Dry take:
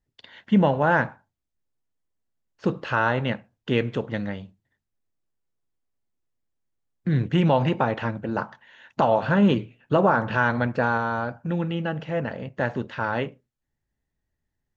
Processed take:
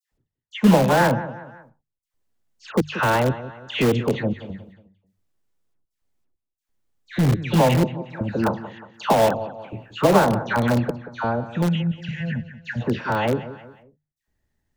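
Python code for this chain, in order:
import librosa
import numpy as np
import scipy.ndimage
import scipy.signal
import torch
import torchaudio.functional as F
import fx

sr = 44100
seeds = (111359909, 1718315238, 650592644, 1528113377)

p1 = fx.step_gate(x, sr, bpm=89, pattern='x..xxxx.x', floor_db=-60.0, edge_ms=4.5)
p2 = fx.hum_notches(p1, sr, base_hz=50, count=3)
p3 = fx.dispersion(p2, sr, late='lows', ms=119.0, hz=1500.0)
p4 = fx.spec_box(p3, sr, start_s=11.68, length_s=1.13, low_hz=240.0, high_hz=1400.0, gain_db=-20)
p5 = p4 + fx.echo_feedback(p4, sr, ms=181, feedback_pct=37, wet_db=-15.0, dry=0)
p6 = fx.dynamic_eq(p5, sr, hz=1500.0, q=1.4, threshold_db=-45.0, ratio=4.0, max_db=-6)
p7 = (np.mod(10.0 ** (18.5 / 20.0) * p6 + 1.0, 2.0) - 1.0) / 10.0 ** (18.5 / 20.0)
p8 = p6 + (p7 * librosa.db_to_amplitude(-9.5))
y = p8 * librosa.db_to_amplitude(4.0)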